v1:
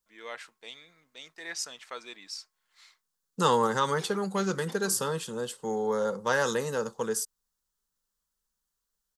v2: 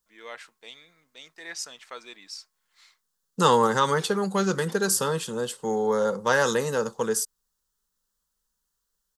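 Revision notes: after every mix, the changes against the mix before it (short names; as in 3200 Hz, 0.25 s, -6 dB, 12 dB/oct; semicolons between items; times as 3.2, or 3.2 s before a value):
second voice +4.5 dB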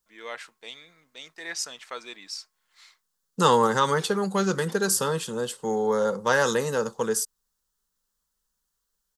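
first voice +3.5 dB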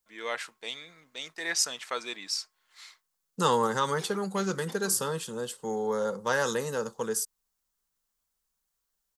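first voice +3.5 dB; second voice -5.5 dB; master: add high shelf 9200 Hz +5 dB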